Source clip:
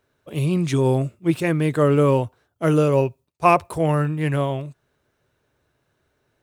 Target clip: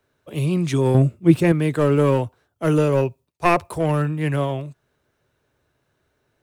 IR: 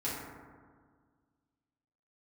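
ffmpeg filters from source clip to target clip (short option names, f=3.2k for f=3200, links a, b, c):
-filter_complex "[0:a]asettb=1/sr,asplit=3[a][b][c];[a]atrim=end=0.944[d];[b]atrim=start=0.94:end=1.52,asetpts=PTS-STARTPTS,afade=t=in:d=0.004:c=qsin,afade=t=out:st=0.576:d=0.004:c=qsin,lowshelf=f=480:g=8.5[e];[c]atrim=start=1.516[f];[d][e]acrossfade=d=0.004:c1=hsin:c2=qsin[g];[g][f]acrossfade=d=0.004:c1=qsin:c2=hsin,acrossover=split=230|460|1900[h][i][j][k];[j]aeval=exprs='clip(val(0),-1,0.0668)':c=same[l];[h][i][l][k]amix=inputs=4:normalize=0"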